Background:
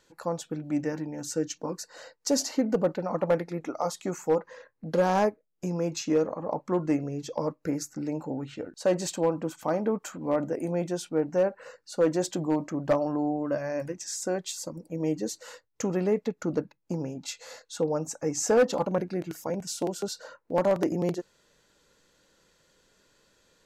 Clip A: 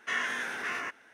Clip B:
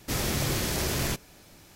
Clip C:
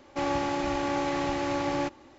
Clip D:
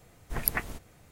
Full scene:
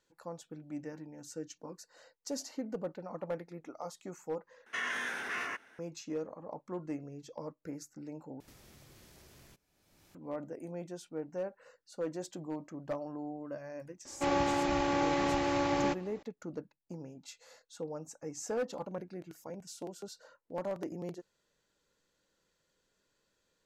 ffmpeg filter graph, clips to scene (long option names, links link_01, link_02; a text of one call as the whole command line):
ffmpeg -i bed.wav -i cue0.wav -i cue1.wav -i cue2.wav -filter_complex "[0:a]volume=-13dB[link_01];[1:a]alimiter=level_in=0.5dB:limit=-24dB:level=0:latency=1:release=14,volume=-0.5dB[link_02];[2:a]acompressor=threshold=-41dB:ratio=10:attack=0.59:release=775:knee=1:detection=peak[link_03];[link_01]asplit=3[link_04][link_05][link_06];[link_04]atrim=end=4.664[link_07];[link_02]atrim=end=1.13,asetpts=PTS-STARTPTS,volume=-2.5dB[link_08];[link_05]atrim=start=5.786:end=8.404[link_09];[link_03]atrim=end=1.75,asetpts=PTS-STARTPTS,volume=-10.5dB[link_10];[link_06]atrim=start=10.146[link_11];[3:a]atrim=end=2.18,asetpts=PTS-STARTPTS,volume=-1.5dB,afade=type=in:duration=0.004:curve=hsin,afade=type=out:start_time=2.176:duration=0.004:curve=hsin,adelay=14050[link_12];[link_07][link_08]acrossfade=duration=0.004:curve1=hsin:curve2=hsin[link_13];[link_13][link_09]acrossfade=duration=0.004:curve1=hsin:curve2=hsin[link_14];[link_14][link_10]acrossfade=duration=0.004:curve1=hsin:curve2=hsin[link_15];[link_15][link_11]acrossfade=duration=0.004:curve1=hsin:curve2=hsin[link_16];[link_16][link_12]amix=inputs=2:normalize=0" out.wav